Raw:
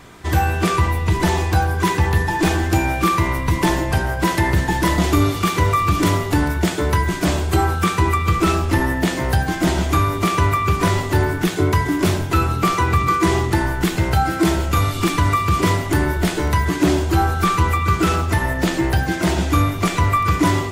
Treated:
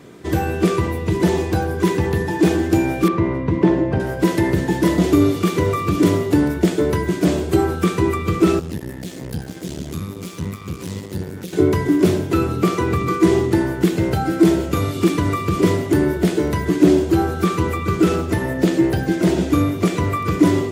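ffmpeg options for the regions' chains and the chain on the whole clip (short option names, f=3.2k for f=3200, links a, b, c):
-filter_complex "[0:a]asettb=1/sr,asplit=3[a][b][c];[a]atrim=end=3.084[d];[b]atrim=start=3.08:end=4,asetpts=PTS-STARTPTS,afade=t=in:d=0.004:c=qsin,afade=t=out:st=0.916:d=0.004:c=qsin,lowpass=f=2.7k:p=1,aemphasis=mode=reproduction:type=75fm[e];[c]atrim=start=3.996[f];[d][e]acrossfade=d=0.004:c1=hsin:c2=qsin[g];[g][f]acrossfade=d=0.004:c1=qsin:c2=hsin,asettb=1/sr,asplit=3[h][i][j];[h]atrim=end=8.594[k];[i]atrim=start=8.59:end=11.53,asetpts=PTS-STARTPTS,afade=t=in:d=0.004:c=qsin,afade=t=out:st=2.936:d=0.004:c=qsin,acrossover=split=140|3000[l][m][n];[m]acompressor=threshold=-31dB:ratio=6:attack=3.2:release=140:knee=2.83:detection=peak[o];[l][o][n]amix=inputs=3:normalize=0,aeval=exprs='max(val(0),0)':c=same[p];[j]atrim=start=11.526[q];[k][p]acrossfade=d=0.004:c1=hsin:c2=qsin[r];[r][q]acrossfade=d=0.004:c1=qsin:c2=hsin,highpass=140,lowshelf=f=630:t=q:w=1.5:g=8,volume=-4.5dB"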